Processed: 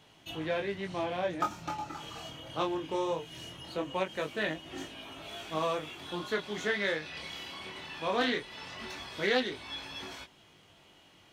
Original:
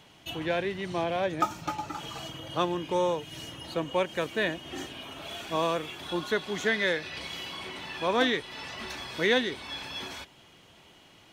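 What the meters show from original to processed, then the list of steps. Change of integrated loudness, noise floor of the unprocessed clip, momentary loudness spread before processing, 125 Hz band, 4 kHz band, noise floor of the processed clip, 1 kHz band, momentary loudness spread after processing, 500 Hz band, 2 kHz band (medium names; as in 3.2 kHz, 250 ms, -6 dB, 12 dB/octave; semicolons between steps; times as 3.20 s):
-4.0 dB, -56 dBFS, 13 LU, -4.5 dB, -4.5 dB, -60 dBFS, -4.0 dB, 13 LU, -4.0 dB, -4.0 dB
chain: chorus 0.2 Hz, delay 18.5 ms, depth 7.6 ms; loudspeaker Doppler distortion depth 0.13 ms; trim -1 dB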